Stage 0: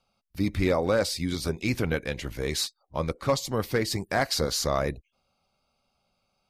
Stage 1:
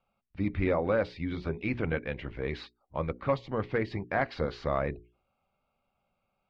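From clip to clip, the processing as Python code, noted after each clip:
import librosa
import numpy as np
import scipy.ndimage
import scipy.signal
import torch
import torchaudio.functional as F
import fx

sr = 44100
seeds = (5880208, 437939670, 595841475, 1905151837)

y = scipy.signal.sosfilt(scipy.signal.butter(4, 2800.0, 'lowpass', fs=sr, output='sos'), x)
y = fx.hum_notches(y, sr, base_hz=60, count=7)
y = y * 10.0 ** (-3.0 / 20.0)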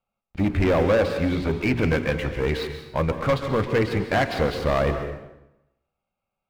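y = fx.leveller(x, sr, passes=3)
y = fx.rev_plate(y, sr, seeds[0], rt60_s=0.9, hf_ratio=0.8, predelay_ms=120, drr_db=7.5)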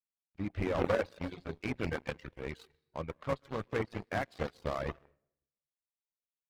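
y = fx.cheby_harmonics(x, sr, harmonics=(3, 6), levels_db=(-10, -44), full_scale_db=-11.0)
y = fx.dereverb_blind(y, sr, rt60_s=0.57)
y = y * 10.0 ** (-5.0 / 20.0)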